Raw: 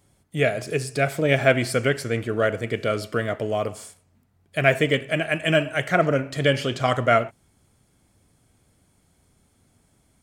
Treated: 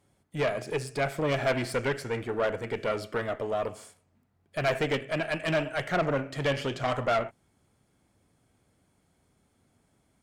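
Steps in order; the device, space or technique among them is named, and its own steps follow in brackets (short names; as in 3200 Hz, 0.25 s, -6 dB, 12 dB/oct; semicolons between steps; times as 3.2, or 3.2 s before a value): tube preamp driven hard (tube stage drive 20 dB, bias 0.6; low shelf 120 Hz -7.5 dB; high shelf 3700 Hz -7.5 dB)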